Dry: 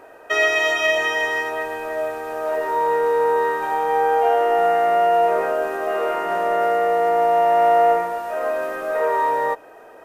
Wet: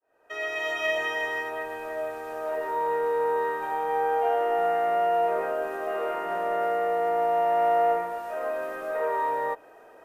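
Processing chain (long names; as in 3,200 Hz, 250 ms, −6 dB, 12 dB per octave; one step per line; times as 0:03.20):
fade in at the beginning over 0.89 s
dynamic equaliser 5,900 Hz, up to −5 dB, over −41 dBFS, Q 0.93
level −7 dB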